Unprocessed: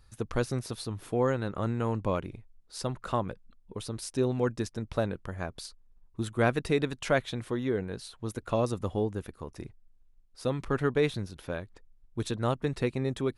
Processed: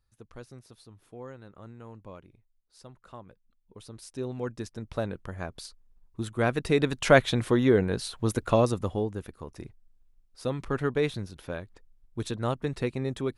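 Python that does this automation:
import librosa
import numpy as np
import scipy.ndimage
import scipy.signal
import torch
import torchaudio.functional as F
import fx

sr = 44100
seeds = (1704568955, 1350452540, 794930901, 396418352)

y = fx.gain(x, sr, db=fx.line((3.26, -16.0), (3.86, -9.0), (5.22, -0.5), (6.47, -0.5), (7.18, 8.5), (8.35, 8.5), (9.06, -0.5)))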